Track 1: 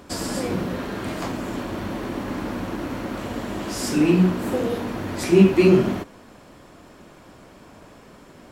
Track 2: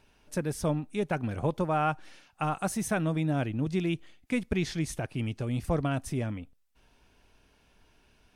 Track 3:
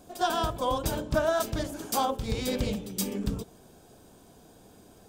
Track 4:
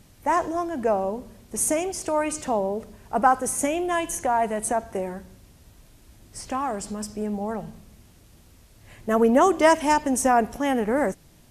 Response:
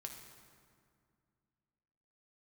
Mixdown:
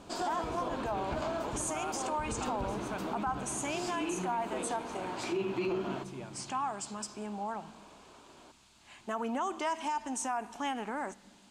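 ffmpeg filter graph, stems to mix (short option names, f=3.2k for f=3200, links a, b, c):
-filter_complex "[0:a]volume=-6.5dB,asplit=2[a][b];[b]volume=-14.5dB[c];[1:a]volume=-7.5dB,asplit=3[d][e][f];[e]volume=-11dB[g];[2:a]lowpass=f=1.4k:p=1,alimiter=limit=-21.5dB:level=0:latency=1:release=203,volume=-0.5dB,asplit=2[h][i];[i]volume=-7.5dB[j];[3:a]equalizer=f=470:t=o:w=1.4:g=-11,volume=1.5dB,asplit=2[k][l];[l]volume=-21.5dB[m];[f]apad=whole_len=224192[n];[h][n]sidechaincompress=threshold=-44dB:ratio=8:attack=16:release=1200[o];[a][d][k]amix=inputs=3:normalize=0,highpass=350,equalizer=f=510:t=q:w=4:g=-7,equalizer=f=900:t=q:w=4:g=4,equalizer=f=1.9k:t=q:w=4:g=-10,equalizer=f=5.6k:t=q:w=4:g=-6,lowpass=f=7.8k:w=0.5412,lowpass=f=7.8k:w=1.3066,acompressor=threshold=-34dB:ratio=2,volume=0dB[p];[4:a]atrim=start_sample=2205[q];[c][g][j][m]amix=inputs=4:normalize=0[r];[r][q]afir=irnorm=-1:irlink=0[s];[o][p][s]amix=inputs=3:normalize=0,alimiter=level_in=1dB:limit=-24dB:level=0:latency=1:release=45,volume=-1dB"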